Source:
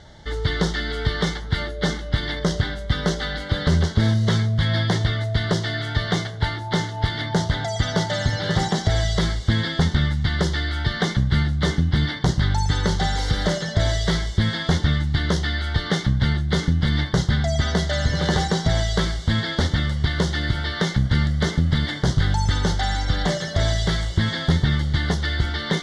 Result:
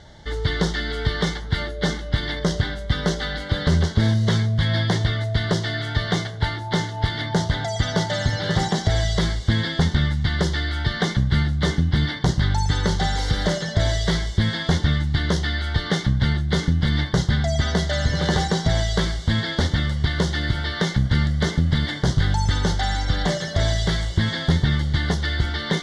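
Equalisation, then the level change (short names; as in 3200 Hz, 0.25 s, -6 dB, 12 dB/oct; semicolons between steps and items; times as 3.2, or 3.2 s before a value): notch 1300 Hz, Q 27; 0.0 dB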